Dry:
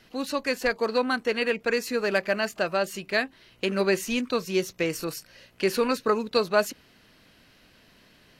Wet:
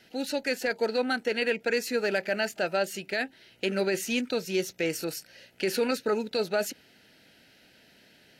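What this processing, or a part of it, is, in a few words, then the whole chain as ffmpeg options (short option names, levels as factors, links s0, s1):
PA system with an anti-feedback notch: -af "highpass=f=180:p=1,asuperstop=centerf=1100:order=4:qfactor=2.9,alimiter=limit=0.141:level=0:latency=1:release=13"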